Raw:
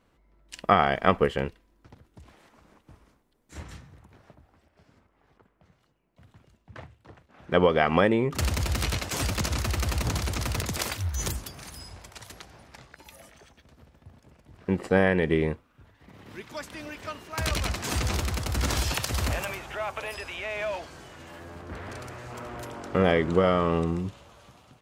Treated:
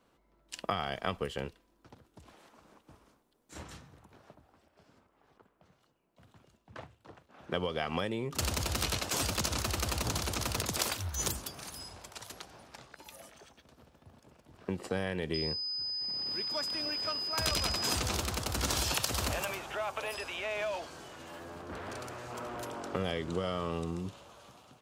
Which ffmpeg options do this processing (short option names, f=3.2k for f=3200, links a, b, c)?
-filter_complex "[0:a]asettb=1/sr,asplit=3[a][b][c];[a]atrim=end=15.344[d];[b]atrim=start=15.34:end=17.95,asetpts=PTS-STARTPTS,afade=t=in:d=0.004:c=qsin,afade=t=out:st=2.606:d=0.004:c=qsin,aeval=exprs='val(0)+0.0224*sin(2*PI*5000*n/s)':c=same[e];[c]atrim=start=17.946[f];[d][e]acrossfade=d=0.004:c1=hsin:c2=qsin[g];[g][f]acrossfade=d=0.004:c1=qsin:c2=hsin,equalizer=f=2k:t=o:w=0.59:g=-5,acrossover=split=130|3000[h][i][j];[i]acompressor=threshold=-31dB:ratio=6[k];[h][k][j]amix=inputs=3:normalize=0,lowshelf=f=140:g=-11.5"